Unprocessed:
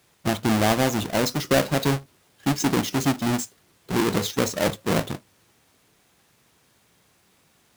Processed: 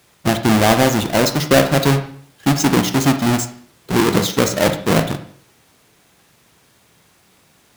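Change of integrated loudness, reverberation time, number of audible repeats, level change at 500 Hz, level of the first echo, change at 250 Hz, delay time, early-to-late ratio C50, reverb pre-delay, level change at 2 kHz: +7.5 dB, 0.55 s, no echo, +7.5 dB, no echo, +7.5 dB, no echo, 10.5 dB, 39 ms, +7.5 dB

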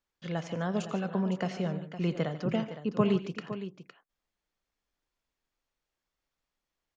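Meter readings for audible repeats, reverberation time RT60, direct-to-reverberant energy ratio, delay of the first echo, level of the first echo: 3, no reverb, no reverb, 86 ms, -16.5 dB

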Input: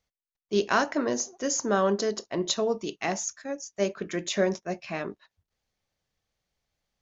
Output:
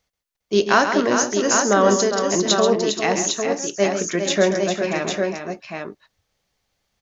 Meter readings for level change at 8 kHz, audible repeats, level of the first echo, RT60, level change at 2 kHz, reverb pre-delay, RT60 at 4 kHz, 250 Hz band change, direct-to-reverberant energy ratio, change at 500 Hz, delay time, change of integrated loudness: no reading, 4, -8.5 dB, no reverb, +10.0 dB, no reverb, no reverb, +8.5 dB, no reverb, +9.5 dB, 134 ms, +9.0 dB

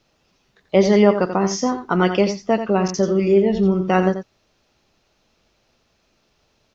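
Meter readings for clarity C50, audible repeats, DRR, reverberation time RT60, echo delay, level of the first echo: no reverb, 1, no reverb, no reverb, 87 ms, -9.5 dB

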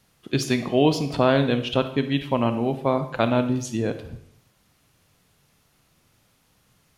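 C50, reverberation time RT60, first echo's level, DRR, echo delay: 11.0 dB, 0.70 s, no echo, 9.0 dB, no echo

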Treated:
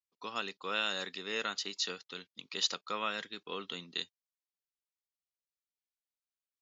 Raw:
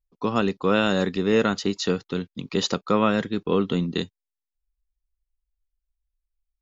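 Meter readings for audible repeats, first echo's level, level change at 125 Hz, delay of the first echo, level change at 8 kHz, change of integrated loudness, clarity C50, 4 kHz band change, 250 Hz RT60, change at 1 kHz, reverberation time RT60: no echo, no echo, -28.0 dB, no echo, no reading, -12.5 dB, no reverb, -3.5 dB, no reverb, -12.0 dB, no reverb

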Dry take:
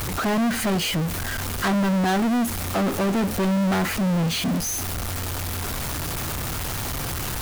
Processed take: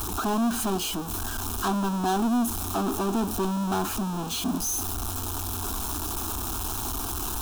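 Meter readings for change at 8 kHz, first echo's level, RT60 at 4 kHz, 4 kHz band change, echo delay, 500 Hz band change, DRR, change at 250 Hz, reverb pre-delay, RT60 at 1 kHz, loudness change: -1.0 dB, no echo, no reverb, -5.0 dB, no echo, -4.5 dB, no reverb, -4.5 dB, no reverb, no reverb, -3.5 dB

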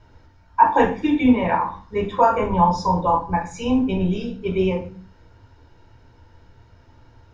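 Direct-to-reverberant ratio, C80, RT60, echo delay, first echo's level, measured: 0.0 dB, 14.5 dB, 0.40 s, no echo, no echo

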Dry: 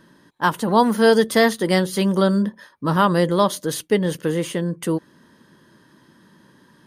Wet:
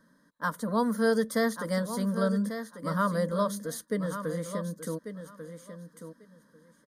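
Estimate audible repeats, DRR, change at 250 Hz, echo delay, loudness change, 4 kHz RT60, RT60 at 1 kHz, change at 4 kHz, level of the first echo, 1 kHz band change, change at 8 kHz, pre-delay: 2, no reverb, -9.5 dB, 1143 ms, -10.5 dB, no reverb, no reverb, -15.5 dB, -10.0 dB, -11.5 dB, -9.0 dB, no reverb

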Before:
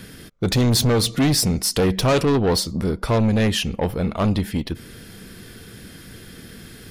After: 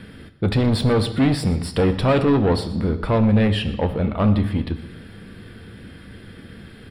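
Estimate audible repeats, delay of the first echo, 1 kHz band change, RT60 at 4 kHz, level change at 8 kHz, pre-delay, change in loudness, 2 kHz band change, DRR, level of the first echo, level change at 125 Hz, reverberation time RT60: 2, 121 ms, +0.5 dB, 1.1 s, under -10 dB, 3 ms, 0.0 dB, -1.0 dB, 8.5 dB, -19.0 dB, +1.5 dB, 1.0 s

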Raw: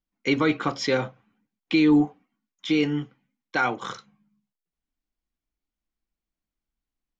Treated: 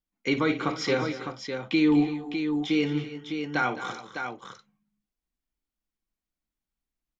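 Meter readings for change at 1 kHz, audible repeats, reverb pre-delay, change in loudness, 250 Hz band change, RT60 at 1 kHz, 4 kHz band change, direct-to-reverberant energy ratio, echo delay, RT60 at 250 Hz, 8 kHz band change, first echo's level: -1.5 dB, 4, no reverb, -3.5 dB, -2.0 dB, no reverb, -2.0 dB, no reverb, 55 ms, no reverb, no reading, -12.5 dB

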